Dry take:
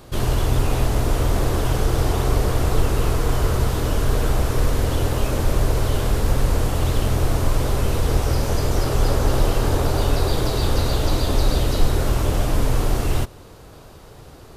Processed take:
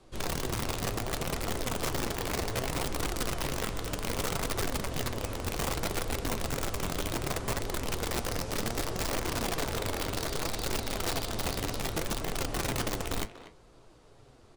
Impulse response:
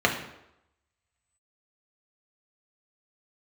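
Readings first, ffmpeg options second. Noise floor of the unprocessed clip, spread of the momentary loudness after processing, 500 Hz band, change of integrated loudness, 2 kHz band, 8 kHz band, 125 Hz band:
-43 dBFS, 2 LU, -10.5 dB, -11.0 dB, -5.0 dB, -4.0 dB, -16.5 dB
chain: -filter_complex "[0:a]lowpass=f=10000:w=0.5412,lowpass=f=10000:w=1.3066,afreqshift=-17,flanger=delay=5.3:depth=3.9:regen=-56:speed=0.3:shape=sinusoidal,aeval=exprs='(mod(7.08*val(0)+1,2)-1)/7.08':c=same,flanger=delay=2.2:depth=9.5:regen=72:speed=0.65:shape=triangular,asplit=2[s0][s1];[s1]adelay=240,highpass=300,lowpass=3400,asoftclip=type=hard:threshold=0.0501,volume=0.316[s2];[s0][s2]amix=inputs=2:normalize=0,asplit=2[s3][s4];[1:a]atrim=start_sample=2205,lowpass=f=2000:w=0.5412,lowpass=f=2000:w=1.3066[s5];[s4][s5]afir=irnorm=-1:irlink=0,volume=0.0237[s6];[s3][s6]amix=inputs=2:normalize=0,volume=0.531"

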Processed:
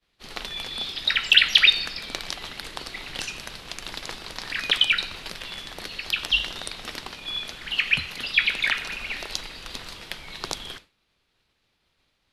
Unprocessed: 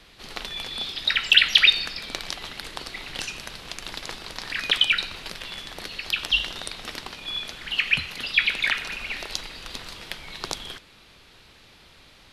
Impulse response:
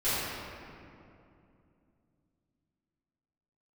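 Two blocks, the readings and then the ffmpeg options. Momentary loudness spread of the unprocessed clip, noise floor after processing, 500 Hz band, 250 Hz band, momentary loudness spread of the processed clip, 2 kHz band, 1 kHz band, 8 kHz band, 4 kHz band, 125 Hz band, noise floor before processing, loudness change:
19 LU, -72 dBFS, 0.0 dB, 0.0 dB, 19 LU, 0.0 dB, 0.0 dB, 0.0 dB, 0.0 dB, 0.0 dB, -53 dBFS, +0.5 dB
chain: -af "agate=range=0.0224:threshold=0.0112:ratio=3:detection=peak"

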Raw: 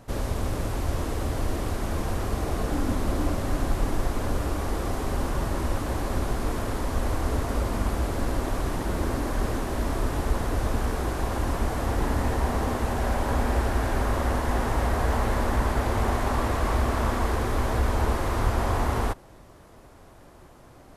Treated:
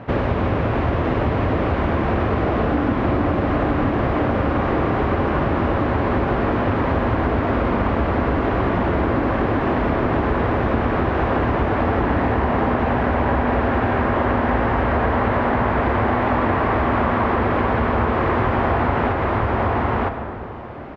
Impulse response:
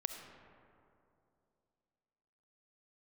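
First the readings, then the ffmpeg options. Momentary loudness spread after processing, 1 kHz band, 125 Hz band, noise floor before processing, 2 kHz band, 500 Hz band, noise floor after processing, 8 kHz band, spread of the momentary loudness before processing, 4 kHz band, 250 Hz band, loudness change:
1 LU, +10.0 dB, +6.0 dB, -50 dBFS, +10.0 dB, +10.0 dB, -23 dBFS, under -20 dB, 4 LU, +2.0 dB, +10.0 dB, +8.0 dB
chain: -filter_complex "[0:a]highpass=89,aecho=1:1:959:0.562,asplit=2[s0][s1];[1:a]atrim=start_sample=2205,highshelf=f=4600:g=11.5[s2];[s1][s2]afir=irnorm=-1:irlink=0,volume=1.41[s3];[s0][s3]amix=inputs=2:normalize=0,acompressor=threshold=0.0708:ratio=6,lowpass=f=2600:w=0.5412,lowpass=f=2600:w=1.3066,volume=2.37"

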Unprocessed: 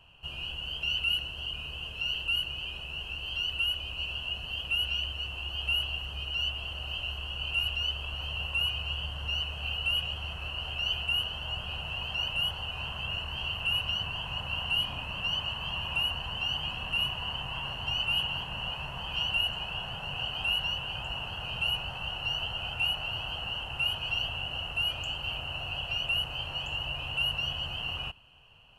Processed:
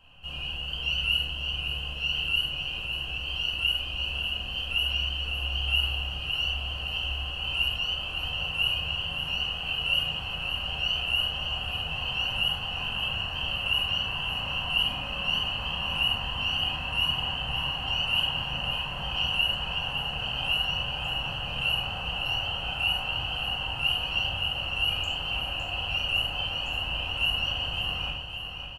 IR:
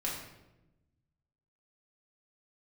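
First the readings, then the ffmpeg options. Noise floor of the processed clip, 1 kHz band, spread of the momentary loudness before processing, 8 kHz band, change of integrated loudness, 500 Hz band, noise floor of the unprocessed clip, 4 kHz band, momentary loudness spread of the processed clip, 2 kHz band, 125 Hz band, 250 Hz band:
-35 dBFS, +4.5 dB, 7 LU, +2.5 dB, +3.5 dB, +4.0 dB, -40 dBFS, +3.5 dB, 5 LU, +3.5 dB, +3.0 dB, +5.0 dB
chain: -filter_complex "[0:a]aecho=1:1:560|1120|1680|2240|2800|3360|3920:0.398|0.223|0.125|0.0699|0.0392|0.0219|0.0123[s0];[1:a]atrim=start_sample=2205,afade=t=out:st=0.16:d=0.01,atrim=end_sample=7497[s1];[s0][s1]afir=irnorm=-1:irlink=0"

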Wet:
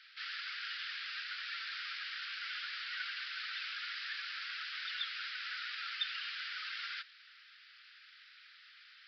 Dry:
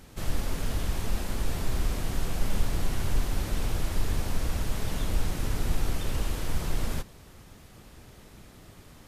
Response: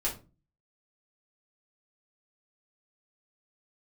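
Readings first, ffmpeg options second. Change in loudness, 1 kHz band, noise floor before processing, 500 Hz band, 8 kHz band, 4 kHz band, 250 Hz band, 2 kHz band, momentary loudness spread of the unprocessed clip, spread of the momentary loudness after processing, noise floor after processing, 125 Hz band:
-7.0 dB, -8.0 dB, -52 dBFS, under -40 dB, -25.0 dB, +2.5 dB, under -40 dB, +3.5 dB, 19 LU, 18 LU, -60 dBFS, under -40 dB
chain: -af "afftdn=nr=12:nf=-34,asuperpass=centerf=3200:order=20:qfactor=0.56,aresample=11025,aresample=44100,volume=5.31"

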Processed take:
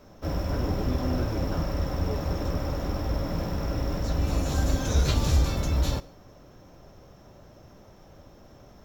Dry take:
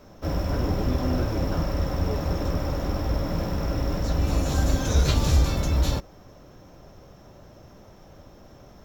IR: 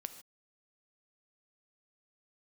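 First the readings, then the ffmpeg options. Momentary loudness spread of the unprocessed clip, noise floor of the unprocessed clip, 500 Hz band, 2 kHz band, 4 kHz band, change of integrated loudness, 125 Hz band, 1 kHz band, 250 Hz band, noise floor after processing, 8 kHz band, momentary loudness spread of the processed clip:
6 LU, -50 dBFS, -2.5 dB, -2.5 dB, -2.5 dB, -2.5 dB, -2.5 dB, -2.5 dB, -2.5 dB, -52 dBFS, -2.5 dB, 6 LU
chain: -filter_complex "[0:a]asplit=2[s0][s1];[1:a]atrim=start_sample=2205[s2];[s1][s2]afir=irnorm=-1:irlink=0,volume=0.631[s3];[s0][s3]amix=inputs=2:normalize=0,volume=0.531"

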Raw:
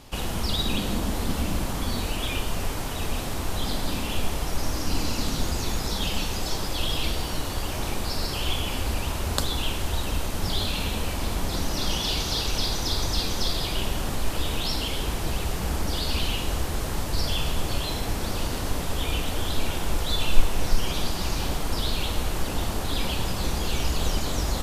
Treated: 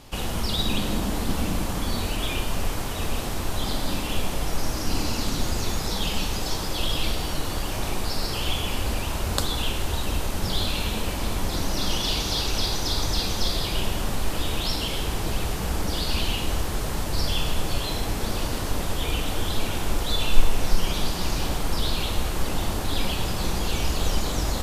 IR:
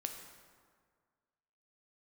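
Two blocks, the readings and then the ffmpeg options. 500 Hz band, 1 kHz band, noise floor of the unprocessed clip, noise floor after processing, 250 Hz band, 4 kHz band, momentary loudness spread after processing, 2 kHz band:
+1.0 dB, +1.0 dB, -30 dBFS, -29 dBFS, +1.0 dB, +1.0 dB, 4 LU, +1.0 dB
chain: -filter_complex "[0:a]asplit=2[s0][s1];[1:a]atrim=start_sample=2205,asetrate=40131,aresample=44100[s2];[s1][s2]afir=irnorm=-1:irlink=0,volume=1.68[s3];[s0][s3]amix=inputs=2:normalize=0,volume=0.447"

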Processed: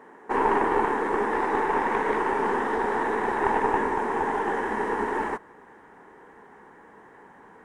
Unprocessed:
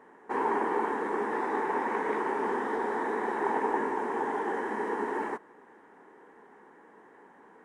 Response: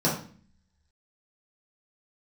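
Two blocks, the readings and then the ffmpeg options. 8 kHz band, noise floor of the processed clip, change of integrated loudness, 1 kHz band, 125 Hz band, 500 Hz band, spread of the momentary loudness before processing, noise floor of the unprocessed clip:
no reading, -51 dBFS, +5.5 dB, +5.5 dB, +10.0 dB, +4.5 dB, 4 LU, -56 dBFS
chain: -af "asubboost=boost=5:cutoff=120,aeval=exprs='0.158*(cos(1*acos(clip(val(0)/0.158,-1,1)))-cos(1*PI/2))+0.0398*(cos(2*acos(clip(val(0)/0.158,-1,1)))-cos(2*PI/2))':c=same,volume=2"

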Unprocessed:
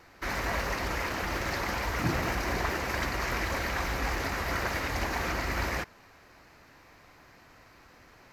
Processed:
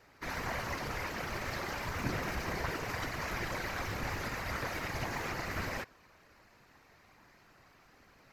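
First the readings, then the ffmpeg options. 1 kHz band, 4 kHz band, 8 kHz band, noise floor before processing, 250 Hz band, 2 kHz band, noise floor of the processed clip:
-6.0 dB, -6.0 dB, -6.0 dB, -57 dBFS, -5.5 dB, -6.0 dB, -63 dBFS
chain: -af "afftfilt=real='hypot(re,im)*cos(2*PI*random(0))':imag='hypot(re,im)*sin(2*PI*random(1))':win_size=512:overlap=0.75"

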